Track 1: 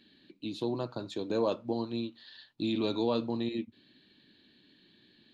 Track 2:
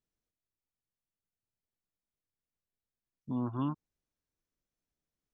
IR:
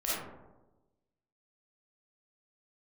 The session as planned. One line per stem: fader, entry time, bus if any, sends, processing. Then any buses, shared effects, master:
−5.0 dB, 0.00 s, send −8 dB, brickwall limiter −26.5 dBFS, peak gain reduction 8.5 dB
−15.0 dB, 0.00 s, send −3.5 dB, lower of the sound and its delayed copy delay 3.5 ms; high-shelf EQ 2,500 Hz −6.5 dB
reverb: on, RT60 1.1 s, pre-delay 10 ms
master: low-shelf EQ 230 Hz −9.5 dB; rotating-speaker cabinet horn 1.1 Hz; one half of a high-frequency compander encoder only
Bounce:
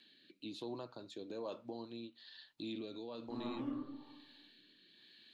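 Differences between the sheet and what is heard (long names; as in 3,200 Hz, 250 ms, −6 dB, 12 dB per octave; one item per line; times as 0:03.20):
stem 1: send off
reverb return +7.5 dB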